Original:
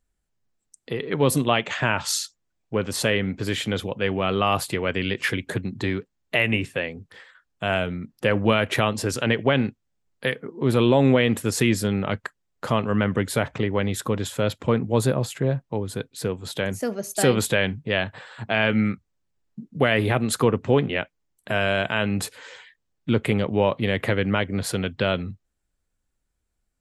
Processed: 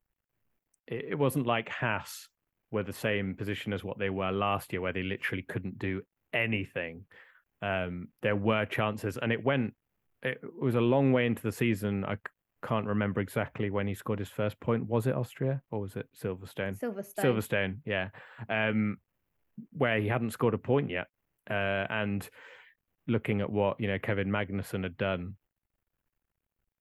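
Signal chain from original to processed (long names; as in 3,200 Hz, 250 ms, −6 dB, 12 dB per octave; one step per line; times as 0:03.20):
bit-depth reduction 12 bits, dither none
flat-topped bell 5,900 Hz −13 dB
level −7.5 dB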